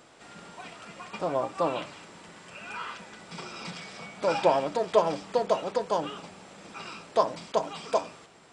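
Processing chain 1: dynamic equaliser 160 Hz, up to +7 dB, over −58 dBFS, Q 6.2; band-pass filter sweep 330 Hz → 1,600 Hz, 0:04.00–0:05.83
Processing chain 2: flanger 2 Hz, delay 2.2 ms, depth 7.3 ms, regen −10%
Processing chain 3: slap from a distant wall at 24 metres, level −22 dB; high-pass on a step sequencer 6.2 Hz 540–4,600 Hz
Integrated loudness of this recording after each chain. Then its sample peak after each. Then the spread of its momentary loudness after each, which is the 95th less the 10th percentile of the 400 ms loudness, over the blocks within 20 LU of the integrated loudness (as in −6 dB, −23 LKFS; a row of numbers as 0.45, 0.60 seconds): −34.5, −32.5, −28.0 LKFS; −13.0, −10.5, −5.0 dBFS; 23, 21, 19 LU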